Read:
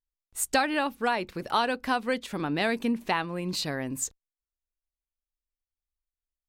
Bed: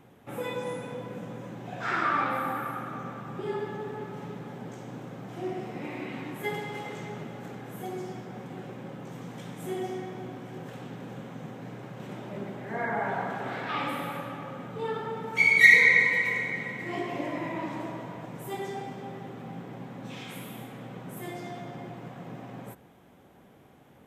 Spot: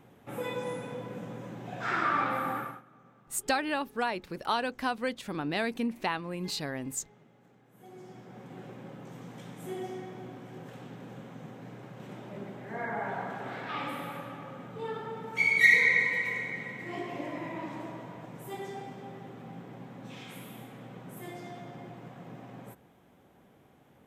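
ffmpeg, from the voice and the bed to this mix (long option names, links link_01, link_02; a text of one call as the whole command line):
ffmpeg -i stem1.wav -i stem2.wav -filter_complex "[0:a]adelay=2950,volume=-4dB[link_01];[1:a]volume=15dB,afade=type=out:start_time=2.58:duration=0.24:silence=0.105925,afade=type=in:start_time=7.71:duration=0.94:silence=0.149624[link_02];[link_01][link_02]amix=inputs=2:normalize=0" out.wav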